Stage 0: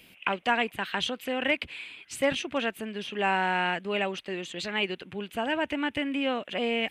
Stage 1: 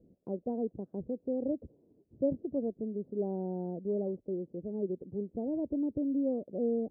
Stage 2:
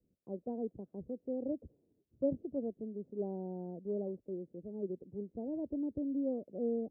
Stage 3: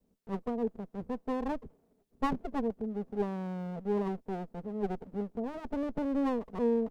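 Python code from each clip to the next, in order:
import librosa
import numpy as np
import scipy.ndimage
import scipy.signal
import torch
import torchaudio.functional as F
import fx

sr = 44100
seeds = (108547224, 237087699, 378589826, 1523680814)

y1 = scipy.signal.sosfilt(scipy.signal.butter(6, 530.0, 'lowpass', fs=sr, output='sos'), x)
y2 = fx.band_widen(y1, sr, depth_pct=40)
y2 = F.gain(torch.from_numpy(y2), -4.5).numpy()
y3 = fx.lower_of_two(y2, sr, delay_ms=4.5)
y3 = F.gain(torch.from_numpy(y3), 6.5).numpy()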